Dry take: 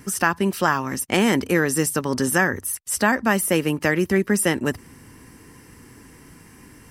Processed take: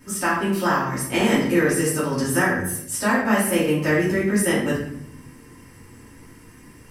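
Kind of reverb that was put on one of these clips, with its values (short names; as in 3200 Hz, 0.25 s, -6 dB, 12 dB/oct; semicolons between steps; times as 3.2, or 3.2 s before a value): shoebox room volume 160 m³, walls mixed, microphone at 2.7 m; gain -10 dB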